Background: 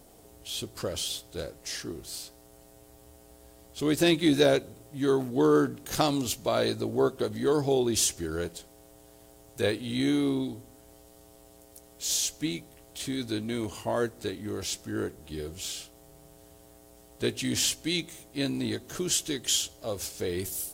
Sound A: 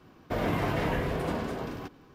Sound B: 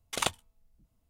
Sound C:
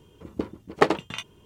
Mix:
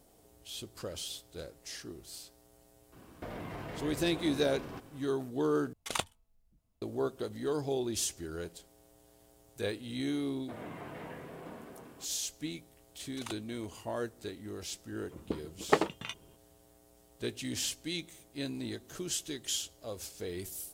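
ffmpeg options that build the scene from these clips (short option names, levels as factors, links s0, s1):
-filter_complex "[1:a]asplit=2[s0][s1];[2:a]asplit=2[s2][s3];[0:a]volume=0.398[s4];[s0]acompressor=threshold=0.0126:ratio=6:attack=3.2:release=140:knee=1:detection=peak[s5];[s1]highpass=140,lowpass=3600[s6];[s4]asplit=2[s7][s8];[s7]atrim=end=5.734[s9];[s2]atrim=end=1.09,asetpts=PTS-STARTPTS,volume=0.596[s10];[s8]atrim=start=6.816[s11];[s5]atrim=end=2.14,asetpts=PTS-STARTPTS,volume=0.891,afade=t=in:d=0.004:c=hsin,afade=t=out:st=2.136:d=0.004:c=hsin,adelay=2920[s12];[s6]atrim=end=2.14,asetpts=PTS-STARTPTS,volume=0.178,afade=t=in:d=0.004:c=hsin,afade=t=out:st=2.136:d=0.004:c=hsin,adelay=448938S[s13];[s3]atrim=end=1.09,asetpts=PTS-STARTPTS,volume=0.188,afade=t=in:d=0.004:c=hsin,afade=t=out:st=1.086:d=0.004:c=hsin,adelay=13040[s14];[3:a]atrim=end=1.45,asetpts=PTS-STARTPTS,volume=0.473,afade=t=in:d=0.004:c=hsin,afade=t=out:st=1.446:d=0.004:c=hsin,adelay=14910[s15];[s9][s10]acrossfade=d=0.004:c1=hsin:c2=hsin[s16];[s16][s11]acrossfade=d=0.004:c1=hsin:c2=hsin[s17];[s17][s12][s13][s14][s15]amix=inputs=5:normalize=0"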